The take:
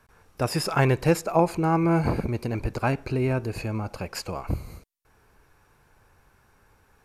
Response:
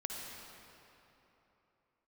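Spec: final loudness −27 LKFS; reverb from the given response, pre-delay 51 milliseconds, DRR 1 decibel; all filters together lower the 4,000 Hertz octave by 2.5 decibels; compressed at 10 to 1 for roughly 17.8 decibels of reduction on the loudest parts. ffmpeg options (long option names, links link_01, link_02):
-filter_complex "[0:a]equalizer=frequency=4000:width_type=o:gain=-3.5,acompressor=threshold=-34dB:ratio=10,asplit=2[link_01][link_02];[1:a]atrim=start_sample=2205,adelay=51[link_03];[link_02][link_03]afir=irnorm=-1:irlink=0,volume=-2dB[link_04];[link_01][link_04]amix=inputs=2:normalize=0,volume=10dB"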